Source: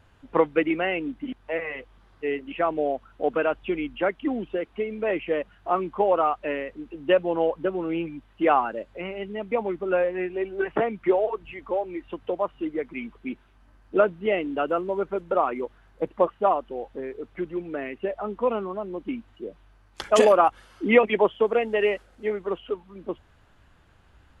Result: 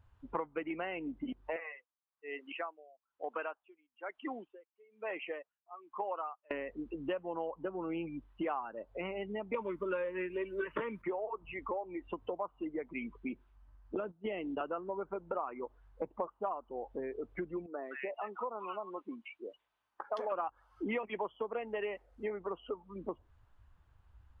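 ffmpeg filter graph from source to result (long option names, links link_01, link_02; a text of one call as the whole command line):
ffmpeg -i in.wav -filter_complex "[0:a]asettb=1/sr,asplit=3[link_01][link_02][link_03];[link_01]atrim=end=1.564[link_04];[link_02]atrim=start=1.56:end=6.51,asetpts=PTS-STARTPTS,afade=type=in:duration=0.004:curve=qsin,afade=type=out:start_time=4.946:duration=0.004:curve=qsin,highpass=frequency=1000:poles=1,aeval=exprs='val(0)*pow(10,-26*(0.5-0.5*cos(2*PI*1.1*n/s))/20)':channel_layout=same[link_05];[link_03]atrim=start=6.506[link_06];[link_04][link_05]acrossfade=duration=0.004:curve1=hsin:curve2=qsin[link_07];[link_07][link_06]acrossfade=duration=0.004:curve1=qsin:curve2=hsin,asettb=1/sr,asplit=3[link_08][link_09][link_10];[link_08]atrim=end=9.544[link_11];[link_09]atrim=start=9.54:end=11.02,asetpts=PTS-STARTPTS,afade=type=in:duration=0.004:curve=qsin,afade=type=out:start_time=1.476:duration=0.004:curve=qsin,aemphasis=mode=production:type=75fm,acontrast=86,asuperstop=centerf=750:order=8:qfactor=2.9[link_12];[link_10]atrim=start=11.016[link_13];[link_11][link_12]acrossfade=duration=0.004:curve1=hsin:curve2=qsin[link_14];[link_14][link_13]acrossfade=duration=0.004:curve1=qsin:curve2=hsin,asettb=1/sr,asplit=3[link_15][link_16][link_17];[link_15]atrim=end=13.954[link_18];[link_16]atrim=start=13.95:end=14.61,asetpts=PTS-STARTPTS,afade=type=in:duration=0.004:curve=qsin,afade=type=out:start_time=0.656:duration=0.004:curve=qsin,agate=range=-13dB:threshold=-33dB:ratio=16:release=100:detection=peak,equalizer=frequency=4300:width_type=o:width=0.68:gain=5.5,acrossover=split=400|3000[link_19][link_20][link_21];[link_20]acompressor=threshold=-29dB:ratio=3:attack=3.2:release=140:knee=2.83:detection=peak[link_22];[link_19][link_22][link_21]amix=inputs=3:normalize=0[link_23];[link_17]atrim=start=14.606[link_24];[link_18][link_23]acrossfade=duration=0.004:curve1=hsin:curve2=qsin[link_25];[link_25][link_24]acrossfade=duration=0.004:curve1=qsin:curve2=hsin,asettb=1/sr,asplit=3[link_26][link_27][link_28];[link_26]atrim=end=17.664[link_29];[link_27]atrim=start=17.66:end=20.32,asetpts=PTS-STARTPTS,afade=type=in:duration=0.004:curve=qsin,afade=type=out:start_time=2.656:duration=0.004:curve=qsin,highpass=frequency=960:poles=1,acrossover=split=1400[link_30][link_31];[link_31]adelay=170[link_32];[link_30][link_32]amix=inputs=2:normalize=0,atrim=end_sample=117306[link_33];[link_28]atrim=start=20.316[link_34];[link_29][link_33]acrossfade=duration=0.004:curve1=hsin:curve2=qsin[link_35];[link_35][link_34]acrossfade=duration=0.004:curve1=qsin:curve2=hsin,afftdn=noise_reduction=16:noise_floor=-45,equalizer=frequency=1000:width_type=o:width=0.85:gain=7.5,acompressor=threshold=-34dB:ratio=5,volume=-2dB" out.wav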